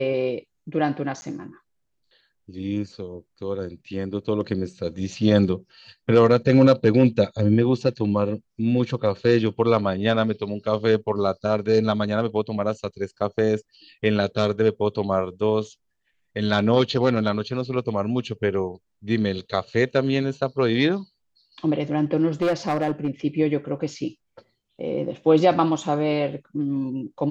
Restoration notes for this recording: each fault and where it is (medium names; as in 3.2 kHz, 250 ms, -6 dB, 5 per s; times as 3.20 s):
1.21–1.22 s: dropout 10 ms
22.42–23.08 s: clipped -17.5 dBFS